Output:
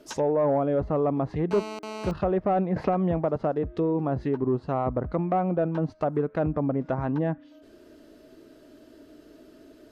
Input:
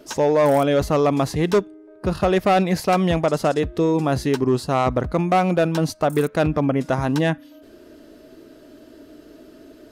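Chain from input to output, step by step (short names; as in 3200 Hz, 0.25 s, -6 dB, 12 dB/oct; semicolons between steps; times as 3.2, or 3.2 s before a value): treble ducked by the level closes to 1000 Hz, closed at -16 dBFS; 1.51–2.11 GSM buzz -30 dBFS; 2.76–3.36 three-band squash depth 70%; gain -6 dB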